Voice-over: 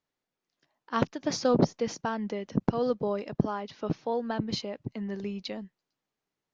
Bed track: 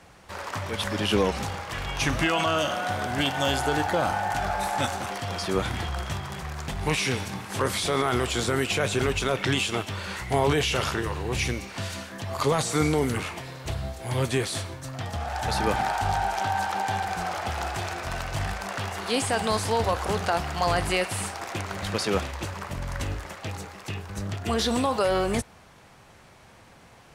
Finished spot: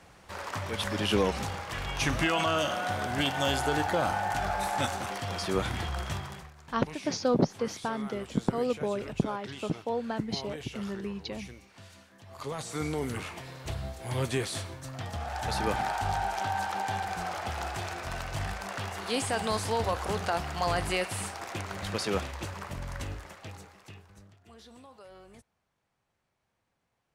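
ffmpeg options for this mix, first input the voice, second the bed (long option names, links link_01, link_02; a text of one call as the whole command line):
ffmpeg -i stem1.wav -i stem2.wav -filter_complex "[0:a]adelay=5800,volume=-1.5dB[link_01];[1:a]volume=11dB,afade=type=out:start_time=6.18:duration=0.34:silence=0.16788,afade=type=in:start_time=12.22:duration=1.37:silence=0.199526,afade=type=out:start_time=22.67:duration=1.67:silence=0.0707946[link_02];[link_01][link_02]amix=inputs=2:normalize=0" out.wav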